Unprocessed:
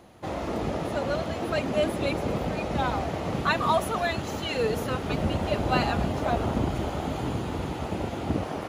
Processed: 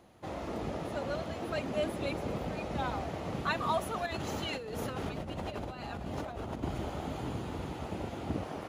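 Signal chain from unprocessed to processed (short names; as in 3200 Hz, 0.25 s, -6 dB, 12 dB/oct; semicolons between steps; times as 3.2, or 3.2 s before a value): 4.06–6.63 negative-ratio compressor -31 dBFS, ratio -1; gain -7.5 dB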